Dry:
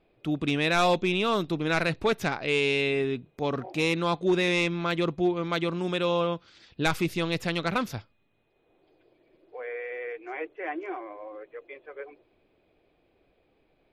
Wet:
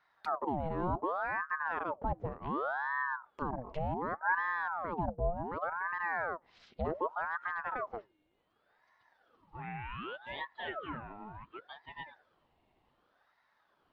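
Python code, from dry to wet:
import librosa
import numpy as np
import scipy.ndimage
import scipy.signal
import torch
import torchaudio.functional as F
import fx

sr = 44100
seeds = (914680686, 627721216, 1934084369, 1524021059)

y = fx.env_lowpass_down(x, sr, base_hz=480.0, full_db=-26.0)
y = fx.ring_lfo(y, sr, carrier_hz=860.0, swing_pct=65, hz=0.67)
y = y * librosa.db_to_amplitude(-3.0)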